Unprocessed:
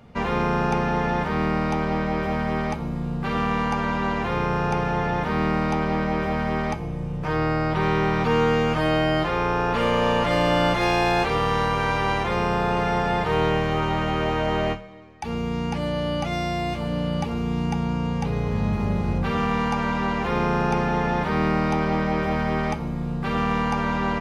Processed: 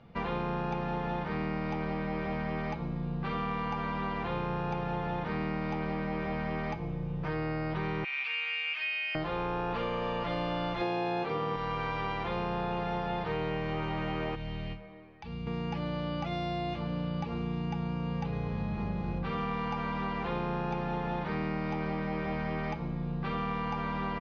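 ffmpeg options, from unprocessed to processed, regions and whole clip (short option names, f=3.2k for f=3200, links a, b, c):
-filter_complex "[0:a]asettb=1/sr,asplit=3[a][b][c];[a]atrim=end=8.044[d];[b]atrim=start=8.04:end=9.15,asetpts=PTS-STARTPTS,afade=t=in:d=0.004:c=qsin,afade=t=out:st=1.106:d=0.004:c=qsin,highpass=f=2.5k:t=q:w=8.4,equalizer=f=4.2k:w=0.41:g=-5.5[e];[c]atrim=start=9.146[f];[d][e]acrossfade=d=0.004:c1=hsin:c2=qsin[g];[g][f]acrossfade=d=0.004:c1=qsin:c2=hsin,asettb=1/sr,asplit=3[h][i][j];[h]atrim=end=10.814[k];[i]atrim=start=10.81:end=11.56,asetpts=PTS-STARTPTS,afade=t=in:d=0.004:c=qsin,afade=t=out:st=0.746:d=0.004:c=qsin,highpass=110,equalizer=f=320:w=0.38:g=7[l];[j]atrim=start=11.556[m];[k][l]acrossfade=d=0.004:c1=hsin:c2=qsin[n];[n][m]acrossfade=d=0.004:c1=qsin:c2=hsin,asettb=1/sr,asplit=3[o][p][q];[o]atrim=end=14.354[r];[p]atrim=start=14.35:end=15.47,asetpts=PTS-STARTPTS,afade=t=in:d=0.004:c=qsin,afade=t=out:st=1.116:d=0.004:c=qsin,acrossover=split=180|3000[s][t][u];[t]acompressor=threshold=-39dB:ratio=6:attack=3.2:release=140:knee=2.83:detection=peak[v];[s][v][u]amix=inputs=3:normalize=0,lowpass=4.3k[w];[q]atrim=start=15.466[x];[r][w]acrossfade=d=0.004:c1=hsin:c2=qsin[y];[y][x]acrossfade=d=0.004:c1=qsin:c2=hsin,lowpass=f=4.7k:w=0.5412,lowpass=f=4.7k:w=1.3066,aecho=1:1:6:0.34,acompressor=threshold=-23dB:ratio=6,volume=-6.5dB"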